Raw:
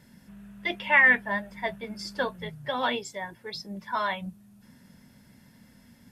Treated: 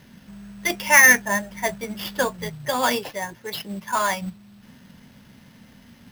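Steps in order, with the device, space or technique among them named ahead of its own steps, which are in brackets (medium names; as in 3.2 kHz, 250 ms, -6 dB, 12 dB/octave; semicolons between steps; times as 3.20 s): early companding sampler (sample-rate reducer 8.1 kHz, jitter 0%; companded quantiser 6-bit); trim +6 dB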